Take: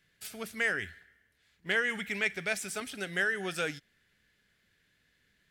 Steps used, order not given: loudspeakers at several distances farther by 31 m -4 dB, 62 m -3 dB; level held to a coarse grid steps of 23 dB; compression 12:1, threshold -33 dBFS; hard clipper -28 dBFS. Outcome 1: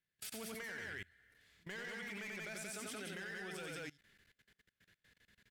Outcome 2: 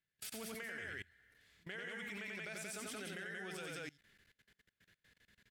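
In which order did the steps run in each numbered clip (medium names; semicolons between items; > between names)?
hard clipper > compression > loudspeakers at several distances > level held to a coarse grid; compression > loudspeakers at several distances > level held to a coarse grid > hard clipper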